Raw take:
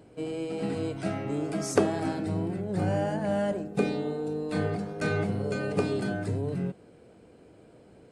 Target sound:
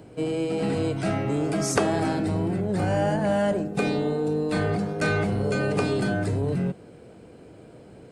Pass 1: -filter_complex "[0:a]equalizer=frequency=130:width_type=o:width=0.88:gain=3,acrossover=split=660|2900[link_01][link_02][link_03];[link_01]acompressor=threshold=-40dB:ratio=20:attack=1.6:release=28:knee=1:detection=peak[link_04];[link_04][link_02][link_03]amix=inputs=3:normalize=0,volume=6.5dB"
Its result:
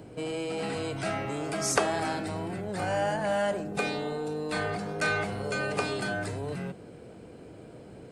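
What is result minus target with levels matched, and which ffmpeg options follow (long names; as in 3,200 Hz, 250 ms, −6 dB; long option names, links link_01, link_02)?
downward compressor: peak gain reduction +11 dB
-filter_complex "[0:a]equalizer=frequency=130:width_type=o:width=0.88:gain=3,acrossover=split=660|2900[link_01][link_02][link_03];[link_01]acompressor=threshold=-28.5dB:ratio=20:attack=1.6:release=28:knee=1:detection=peak[link_04];[link_04][link_02][link_03]amix=inputs=3:normalize=0,volume=6.5dB"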